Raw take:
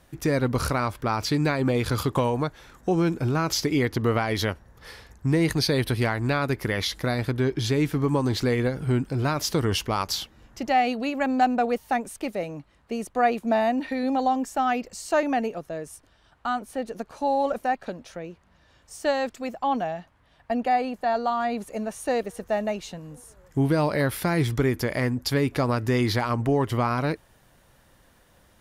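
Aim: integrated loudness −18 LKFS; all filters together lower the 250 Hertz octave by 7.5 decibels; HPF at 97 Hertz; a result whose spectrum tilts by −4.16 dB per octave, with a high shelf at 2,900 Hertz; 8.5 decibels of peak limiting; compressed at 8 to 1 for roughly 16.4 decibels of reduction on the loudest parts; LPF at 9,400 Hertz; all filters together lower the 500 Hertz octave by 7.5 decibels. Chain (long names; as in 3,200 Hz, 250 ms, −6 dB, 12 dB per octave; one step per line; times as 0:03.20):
high-pass filter 97 Hz
low-pass filter 9,400 Hz
parametric band 250 Hz −7 dB
parametric band 500 Hz −8 dB
high-shelf EQ 2,900 Hz +4 dB
downward compressor 8 to 1, threshold −37 dBFS
level +24.5 dB
brickwall limiter −7 dBFS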